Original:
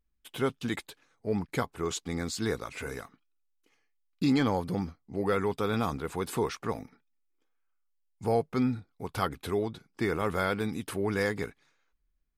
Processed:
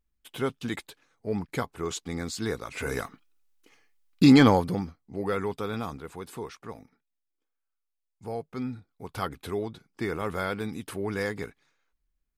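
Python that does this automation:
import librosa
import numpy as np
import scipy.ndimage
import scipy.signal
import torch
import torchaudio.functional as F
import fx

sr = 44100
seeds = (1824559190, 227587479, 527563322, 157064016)

y = fx.gain(x, sr, db=fx.line((2.62, 0.0), (3.02, 9.5), (4.47, 9.5), (4.87, -1.0), (5.44, -1.0), (6.34, -8.0), (8.34, -8.0), (9.27, -1.5)))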